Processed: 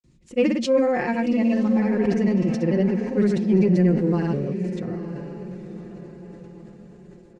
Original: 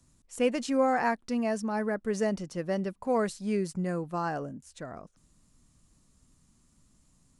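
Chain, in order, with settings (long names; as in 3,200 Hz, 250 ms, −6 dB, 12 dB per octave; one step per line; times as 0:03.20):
high-pass filter 42 Hz
flat-topped bell 970 Hz −11.5 dB
mains-hum notches 50/100/150/200 Hz
comb filter 5.6 ms, depth 61%
granular cloud, pitch spread up and down by 0 semitones
in parallel at −6.5 dB: soft clipping −27 dBFS, distortion −14 dB
on the sum: head-to-tape spacing loss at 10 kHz 25 dB
feedback delay with all-pass diffusion 956 ms, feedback 42%, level −11 dB
on a send at −22 dB: convolution reverb RT60 0.60 s, pre-delay 27 ms
on the sum: level that may fall only so fast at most 46 dB per second
level +8.5 dB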